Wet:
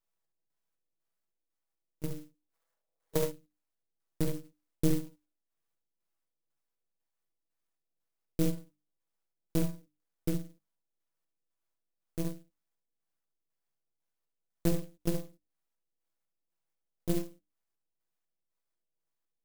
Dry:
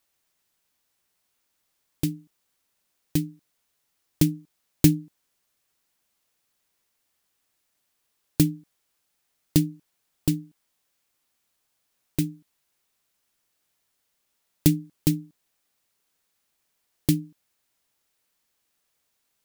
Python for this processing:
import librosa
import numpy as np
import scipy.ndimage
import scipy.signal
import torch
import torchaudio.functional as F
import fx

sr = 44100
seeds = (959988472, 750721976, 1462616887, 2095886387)

y = fx.pitch_glide(x, sr, semitones=2.5, runs='starting unshifted')
y = np.maximum(y, 0.0)
y = fx.spec_box(y, sr, start_s=2.54, length_s=0.7, low_hz=430.0, high_hz=2300.0, gain_db=12)
y = fx.filter_lfo_lowpass(y, sr, shape='square', hz=2.0, low_hz=540.0, high_hz=3800.0, q=0.96)
y = fx.hum_notches(y, sr, base_hz=50, count=6)
y = y + 0.46 * np.pad(y, (int(6.1 * sr / 1000.0), 0))[:len(y)]
y = fx.room_early_taps(y, sr, ms=(47, 70), db=(-10.0, -6.0))
y = fx.clock_jitter(y, sr, seeds[0], jitter_ms=0.11)
y = F.gain(torch.from_numpy(y), -8.0).numpy()